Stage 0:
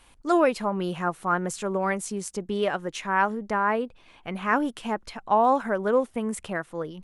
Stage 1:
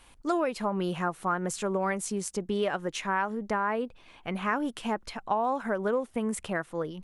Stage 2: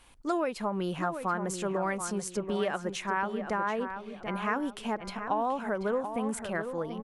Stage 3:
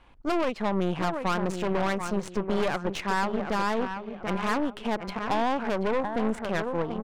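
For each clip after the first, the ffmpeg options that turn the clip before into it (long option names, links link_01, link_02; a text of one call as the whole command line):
ffmpeg -i in.wav -af "acompressor=threshold=-24dB:ratio=6" out.wav
ffmpeg -i in.wav -filter_complex "[0:a]asplit=2[link_01][link_02];[link_02]adelay=734,lowpass=frequency=2700:poles=1,volume=-8dB,asplit=2[link_03][link_04];[link_04]adelay=734,lowpass=frequency=2700:poles=1,volume=0.35,asplit=2[link_05][link_06];[link_06]adelay=734,lowpass=frequency=2700:poles=1,volume=0.35,asplit=2[link_07][link_08];[link_08]adelay=734,lowpass=frequency=2700:poles=1,volume=0.35[link_09];[link_01][link_03][link_05][link_07][link_09]amix=inputs=5:normalize=0,volume=-2dB" out.wav
ffmpeg -i in.wav -af "aeval=exprs='0.158*(cos(1*acos(clip(val(0)/0.158,-1,1)))-cos(1*PI/2))+0.02*(cos(5*acos(clip(val(0)/0.158,-1,1)))-cos(5*PI/2))+0.0282*(cos(8*acos(clip(val(0)/0.158,-1,1)))-cos(8*PI/2))':channel_layout=same,adynamicsmooth=sensitivity=4:basefreq=2500" out.wav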